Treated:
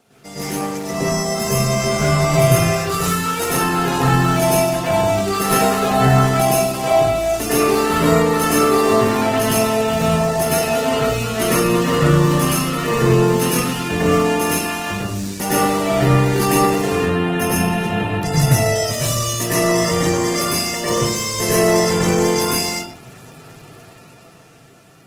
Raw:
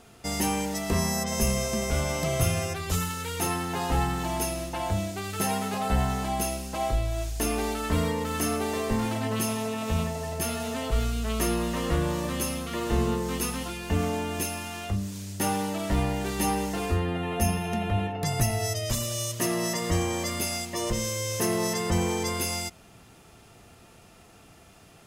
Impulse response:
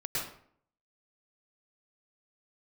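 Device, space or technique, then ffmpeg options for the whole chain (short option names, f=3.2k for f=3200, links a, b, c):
far-field microphone of a smart speaker: -filter_complex "[1:a]atrim=start_sample=2205[a];[0:a][a]afir=irnorm=-1:irlink=0,highpass=f=110:w=0.5412,highpass=f=110:w=1.3066,dynaudnorm=f=260:g=11:m=9.5dB" -ar 48000 -c:a libopus -b:a 16k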